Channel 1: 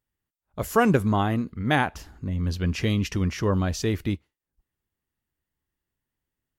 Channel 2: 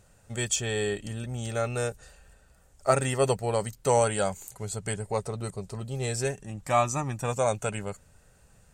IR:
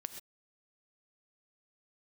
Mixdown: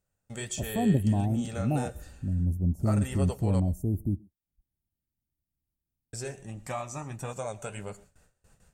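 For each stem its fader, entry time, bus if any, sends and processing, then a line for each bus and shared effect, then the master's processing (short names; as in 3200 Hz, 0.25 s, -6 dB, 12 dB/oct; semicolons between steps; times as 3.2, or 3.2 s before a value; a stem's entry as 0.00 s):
-5.5 dB, 0.00 s, send -15 dB, inverse Chebyshev band-stop 1700–3900 Hz, stop band 70 dB; comb 1.1 ms, depth 71%
-1.0 dB, 0.00 s, muted 3.6–6.13, send -5 dB, gate with hold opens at -47 dBFS; compressor 4:1, threshold -31 dBFS, peak gain reduction 12.5 dB; flange 1.5 Hz, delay 4.1 ms, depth 9.6 ms, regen -59%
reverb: on, pre-delay 3 ms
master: dry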